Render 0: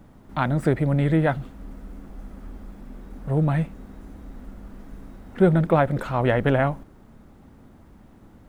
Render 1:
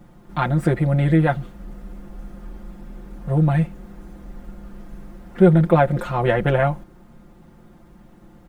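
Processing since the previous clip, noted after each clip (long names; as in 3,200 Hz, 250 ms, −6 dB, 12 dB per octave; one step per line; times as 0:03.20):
comb filter 5.7 ms, depth 82%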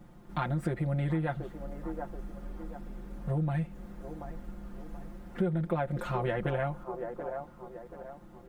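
delay with a band-pass on its return 732 ms, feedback 38%, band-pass 610 Hz, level −12 dB
downward compressor 4 to 1, threshold −23 dBFS, peak gain reduction 13 dB
level −5.5 dB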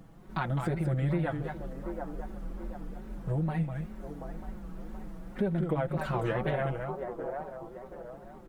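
single-tap delay 206 ms −6 dB
tape wow and flutter 140 cents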